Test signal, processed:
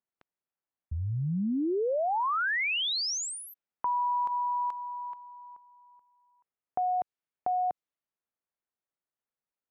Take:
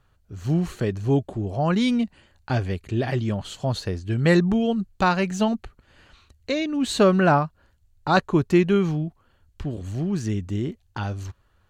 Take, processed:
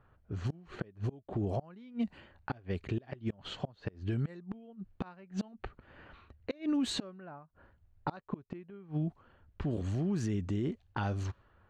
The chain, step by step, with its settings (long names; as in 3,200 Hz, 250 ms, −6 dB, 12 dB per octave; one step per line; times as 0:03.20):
gate with flip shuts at −15 dBFS, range −32 dB
brickwall limiter −23 dBFS
high-shelf EQ 3,400 Hz −8 dB
low-pass that shuts in the quiet parts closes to 1,900 Hz, open at −26 dBFS
downward compressor 2 to 1, threshold −32 dBFS
low-shelf EQ 77 Hz −9 dB
level +2.5 dB